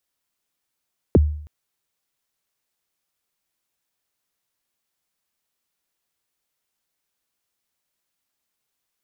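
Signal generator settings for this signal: kick drum length 0.32 s, from 540 Hz, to 75 Hz, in 27 ms, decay 0.60 s, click off, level -7.5 dB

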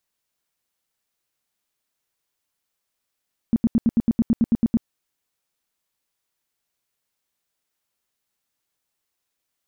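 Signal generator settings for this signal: tone bursts 230 Hz, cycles 7, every 0.11 s, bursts 12, -13 dBFS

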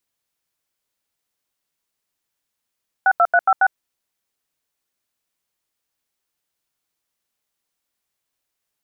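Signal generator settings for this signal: DTMF "62356", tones 55 ms, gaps 83 ms, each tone -13.5 dBFS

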